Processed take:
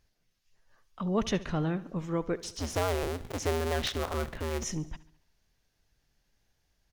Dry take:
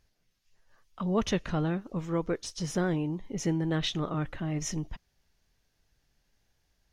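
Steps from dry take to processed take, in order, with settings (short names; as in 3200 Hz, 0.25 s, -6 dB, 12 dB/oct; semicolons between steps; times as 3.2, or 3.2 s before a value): 2.39–4.64 cycle switcher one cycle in 2, inverted; feedback echo 70 ms, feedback 55%, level -18.5 dB; gain -1 dB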